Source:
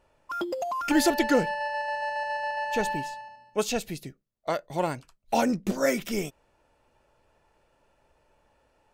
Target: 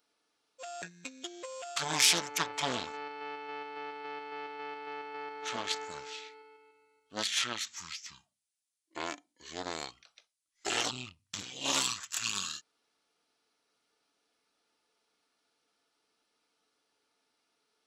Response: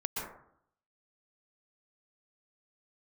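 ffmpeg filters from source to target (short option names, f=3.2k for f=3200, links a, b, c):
-af "asetrate=22050,aresample=44100,aeval=exprs='0.335*(cos(1*acos(clip(val(0)/0.335,-1,1)))-cos(1*PI/2))+0.119*(cos(4*acos(clip(val(0)/0.335,-1,1)))-cos(4*PI/2))':c=same,aderivative,volume=8.5dB"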